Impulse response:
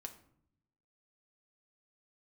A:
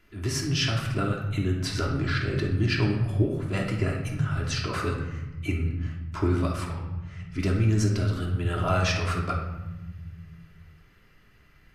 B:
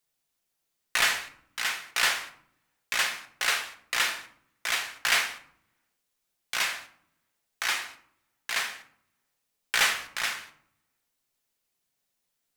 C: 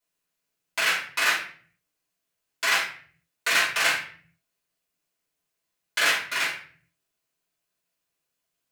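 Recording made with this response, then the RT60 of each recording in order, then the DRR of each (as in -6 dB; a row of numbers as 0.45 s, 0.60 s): B; 1.1 s, 0.65 s, 0.50 s; -2.5 dB, 4.5 dB, -9.5 dB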